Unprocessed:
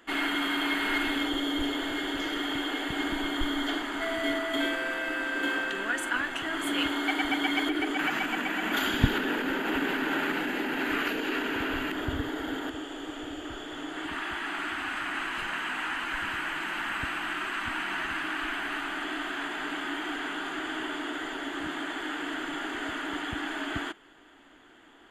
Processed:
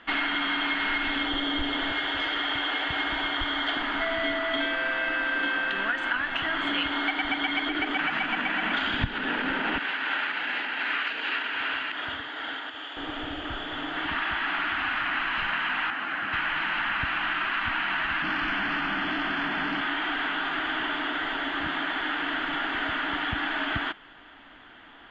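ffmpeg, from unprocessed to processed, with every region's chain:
-filter_complex "[0:a]asettb=1/sr,asplit=3[a][b][c];[a]atrim=end=1.924[d];[b]atrim=start=1.92:end=3.77,asetpts=PTS-STARTPTS,afade=t=in:d=0.004:c=qsin,afade=t=out:st=1.846:d=0.004:c=qsin,highpass=f=75:p=1,equalizer=f=210:w=1.5:g=-10.5,acrusher=bits=5:mode=log:mix=0:aa=0.000001[e];[c]atrim=start=3.766[f];[d][e]acrossfade=d=0.004:c1=hsin:c2=qsin[g];[g][f]acrossfade=d=0.004:c1=qsin:c2=hsin,asettb=1/sr,asplit=3[h][i][j];[h]atrim=end=9.784[k];[i]atrim=start=9.78:end=12.97,asetpts=PTS-STARTPTS,afade=t=in:d=0.004:c=qsin,afade=t=out:st=3.186:d=0.004:c=qsin,highpass=f=1.3k:p=1,tremolo=f=2.6:d=0.28[l];[j]atrim=start=12.966[m];[k][l]acrossfade=d=0.004:c1=hsin:c2=qsin[n];[n][m]acrossfade=d=0.004:c1=qsin:c2=hsin,asettb=1/sr,asplit=3[o][p][q];[o]atrim=end=15.904[r];[p]atrim=start=15.9:end=16.33,asetpts=PTS-STARTPTS,afade=t=in:d=0.004:c=qsin,afade=t=out:st=0.426:d=0.004:c=qsin,highpass=190,equalizer=f=3.8k:w=0.4:g=-8.5,bandreject=f=960:w=7.1[s];[q]atrim=start=16.326[t];[r][s]acrossfade=d=0.004:c1=hsin:c2=qsin[u];[u][t]acrossfade=d=0.004:c1=qsin:c2=hsin,asettb=1/sr,asplit=3[v][w][x];[v]atrim=end=18.224[y];[w]atrim=start=18.22:end=19.81,asetpts=PTS-STARTPTS,afade=t=in:d=0.004:c=qsin,afade=t=out:st=1.586:d=0.004:c=qsin,equalizer=f=190:t=o:w=1.2:g=12,asoftclip=type=hard:threshold=-28dB,bandreject=f=3.8k:w=7.7[z];[x]atrim=start=19.806[aa];[y][z]acrossfade=d=0.004:c1=hsin:c2=qsin[ab];[ab][aa]acrossfade=d=0.004:c1=qsin:c2=hsin,lowpass=f=3.8k:w=0.5412,lowpass=f=3.8k:w=1.3066,equalizer=f=370:t=o:w=0.99:g=-10,acompressor=threshold=-32dB:ratio=6,volume=8dB"

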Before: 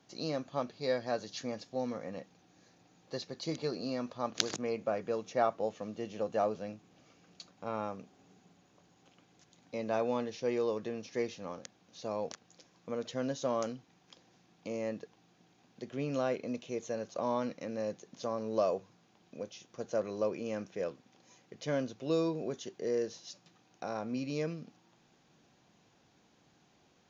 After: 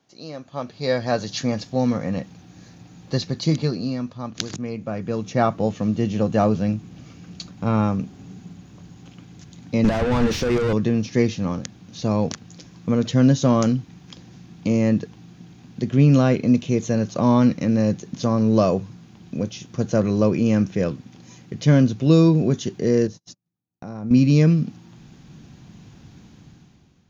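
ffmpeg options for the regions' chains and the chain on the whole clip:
-filter_complex "[0:a]asettb=1/sr,asplit=3[a][b][c];[a]atrim=end=9.844[d];[b]atrim=start=9.84:end=10.73,asetpts=PTS-STARTPTS,afade=t=in:d=0.004:c=qsin,afade=t=out:st=0.886:d=0.004:c=qsin,bass=f=250:g=-3,treble=f=4k:g=5,acompressor=threshold=-35dB:ratio=5:attack=3.2:release=140:knee=1:detection=peak,asplit=2[e][f];[f]highpass=f=720:p=1,volume=27dB,asoftclip=type=tanh:threshold=-27.5dB[g];[e][g]amix=inputs=2:normalize=0,lowpass=f=1.7k:p=1,volume=-6dB[h];[c]atrim=start=10.726[i];[d][h]acrossfade=d=0.004:c1=hsin:c2=qsin[j];[j][i]acrossfade=d=0.004:c1=qsin:c2=hsin,asettb=1/sr,asplit=3[k][l][m];[k]atrim=end=23.074[n];[l]atrim=start=23.07:end=24.11,asetpts=PTS-STARTPTS,afade=t=in:d=0.004:c=qsin,afade=t=out:st=1.036:d=0.004:c=qsin,equalizer=f=3.3k:t=o:w=2:g=-9.5,acompressor=threshold=-50dB:ratio=2.5:attack=3.2:release=140:knee=1:detection=peak,agate=range=-41dB:threshold=-56dB:ratio=16:release=100:detection=peak[o];[m]atrim=start=24.106[p];[n][o]acrossfade=d=0.004:c1=hsin:c2=qsin[q];[q][p]acrossfade=d=0.004:c1=qsin:c2=hsin,asubboost=boost=7:cutoff=200,dynaudnorm=f=170:g=9:m=15dB,volume=-1dB"

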